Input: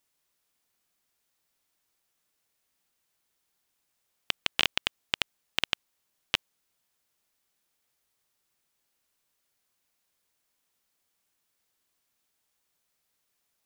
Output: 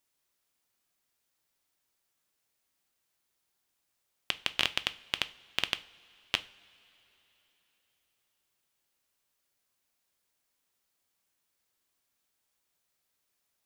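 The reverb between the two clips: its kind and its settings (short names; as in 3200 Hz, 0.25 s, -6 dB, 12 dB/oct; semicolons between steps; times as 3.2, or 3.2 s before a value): two-slope reverb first 0.36 s, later 3.9 s, from -21 dB, DRR 11.5 dB; gain -2.5 dB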